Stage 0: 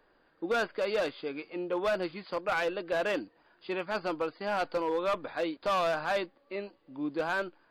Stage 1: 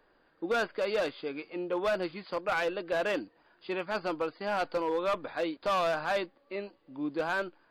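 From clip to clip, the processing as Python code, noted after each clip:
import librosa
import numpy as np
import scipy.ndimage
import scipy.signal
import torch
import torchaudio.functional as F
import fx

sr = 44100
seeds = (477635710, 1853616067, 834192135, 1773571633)

y = x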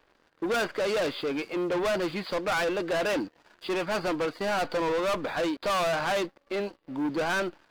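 y = fx.leveller(x, sr, passes=3)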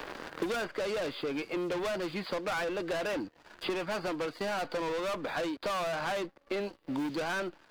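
y = fx.band_squash(x, sr, depth_pct=100)
y = y * librosa.db_to_amplitude(-6.0)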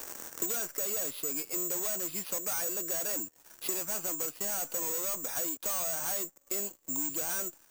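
y = (np.kron(x[::6], np.eye(6)[0]) * 6)[:len(x)]
y = y * librosa.db_to_amplitude(-8.0)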